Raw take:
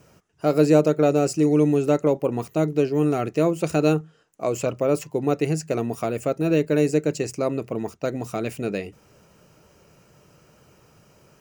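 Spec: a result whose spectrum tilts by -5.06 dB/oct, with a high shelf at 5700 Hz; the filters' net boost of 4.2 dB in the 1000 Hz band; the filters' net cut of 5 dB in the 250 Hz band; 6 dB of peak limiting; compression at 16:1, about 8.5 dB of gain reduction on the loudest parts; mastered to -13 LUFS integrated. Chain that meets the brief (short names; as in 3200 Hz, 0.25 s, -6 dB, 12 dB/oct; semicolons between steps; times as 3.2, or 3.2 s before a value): bell 250 Hz -7.5 dB; bell 1000 Hz +7.5 dB; high shelf 5700 Hz -8 dB; compressor 16:1, threshold -21 dBFS; gain +17 dB; limiter -0.5 dBFS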